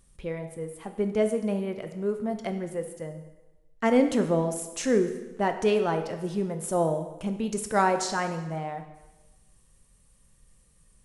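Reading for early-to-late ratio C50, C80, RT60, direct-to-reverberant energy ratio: 9.5 dB, 11.5 dB, 1.1 s, 6.5 dB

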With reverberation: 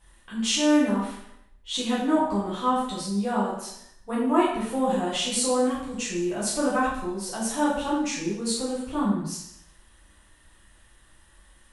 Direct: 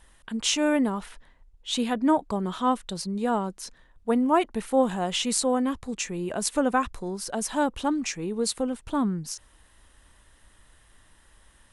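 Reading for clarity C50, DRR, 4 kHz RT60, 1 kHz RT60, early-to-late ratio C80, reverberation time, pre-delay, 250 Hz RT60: 1.5 dB, -8.5 dB, 0.70 s, 0.75 s, 4.5 dB, 0.75 s, 4 ms, 0.75 s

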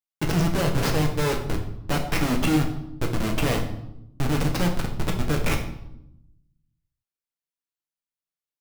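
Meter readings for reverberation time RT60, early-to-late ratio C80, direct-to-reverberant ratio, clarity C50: 0.80 s, 11.5 dB, 1.0 dB, 8.0 dB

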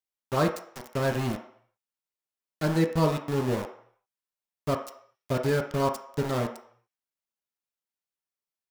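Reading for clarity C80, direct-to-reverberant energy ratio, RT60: 12.5 dB, 2.5 dB, 0.65 s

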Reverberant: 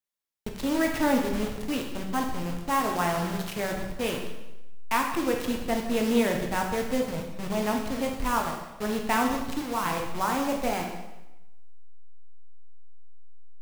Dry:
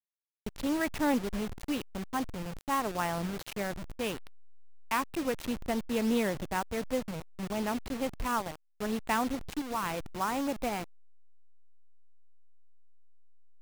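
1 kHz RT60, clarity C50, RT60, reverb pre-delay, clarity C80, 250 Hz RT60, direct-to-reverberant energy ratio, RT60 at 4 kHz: 1.0 s, 5.0 dB, 1.0 s, 5 ms, 7.0 dB, 0.95 s, 1.5 dB, 0.90 s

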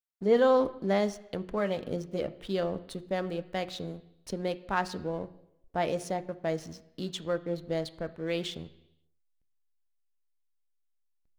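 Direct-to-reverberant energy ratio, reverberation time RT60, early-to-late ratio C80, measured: 10.5 dB, 0.85 s, 19.0 dB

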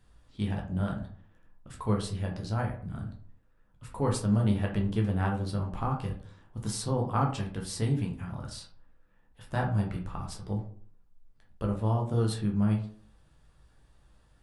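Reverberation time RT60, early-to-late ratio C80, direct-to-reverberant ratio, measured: 0.50 s, 13.0 dB, 0.0 dB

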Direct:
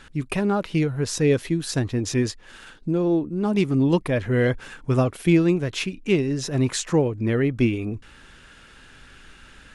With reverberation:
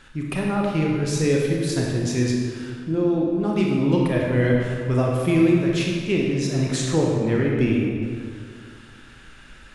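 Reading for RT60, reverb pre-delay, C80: 2.1 s, 26 ms, 1.5 dB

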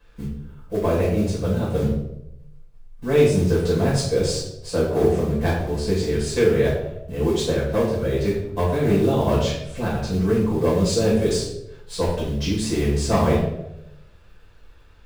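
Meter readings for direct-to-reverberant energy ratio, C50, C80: -7.5 dB, 3.5 dB, 6.5 dB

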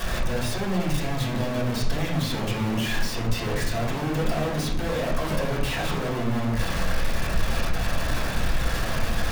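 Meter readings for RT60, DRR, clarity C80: 0.70 s, -6.5 dB, 8.0 dB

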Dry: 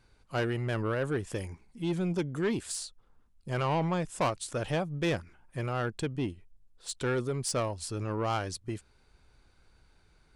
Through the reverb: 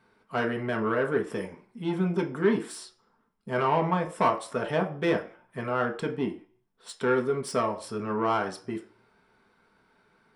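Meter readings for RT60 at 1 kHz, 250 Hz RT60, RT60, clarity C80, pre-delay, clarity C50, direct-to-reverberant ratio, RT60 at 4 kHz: 0.50 s, 0.40 s, 0.45 s, 17.0 dB, 3 ms, 12.5 dB, 2.0 dB, 0.45 s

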